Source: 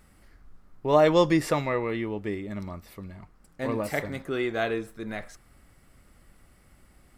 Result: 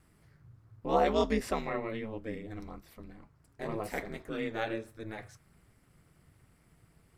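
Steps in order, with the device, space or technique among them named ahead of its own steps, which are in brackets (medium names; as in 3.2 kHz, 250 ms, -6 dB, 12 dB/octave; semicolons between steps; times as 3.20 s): alien voice (ring modulator 110 Hz; flange 1.4 Hz, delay 2.4 ms, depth 4.9 ms, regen -68%)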